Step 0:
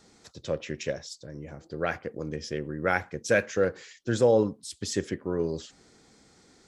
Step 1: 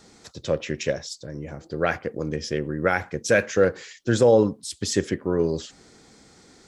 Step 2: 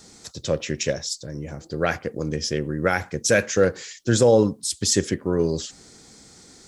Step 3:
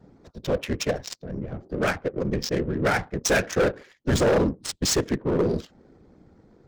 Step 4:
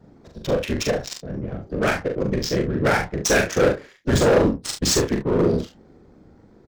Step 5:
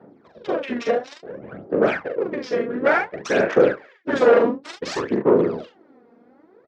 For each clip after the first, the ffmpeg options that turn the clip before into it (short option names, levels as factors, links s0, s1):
-af "alimiter=level_in=4.47:limit=0.891:release=50:level=0:latency=1,volume=0.447"
-af "bass=f=250:g=3,treble=f=4000:g=9"
-af "afftfilt=real='hypot(re,im)*cos(2*PI*random(0))':imag='hypot(re,im)*sin(2*PI*random(1))':win_size=512:overlap=0.75,adynamicsmooth=sensitivity=8:basefreq=760,volume=14.1,asoftclip=hard,volume=0.0708,volume=2.11"
-af "aecho=1:1:41|70:0.631|0.266,volume=1.26"
-af "aphaser=in_gain=1:out_gain=1:delay=4.3:decay=0.68:speed=0.57:type=sinusoidal,highpass=340,lowpass=2200"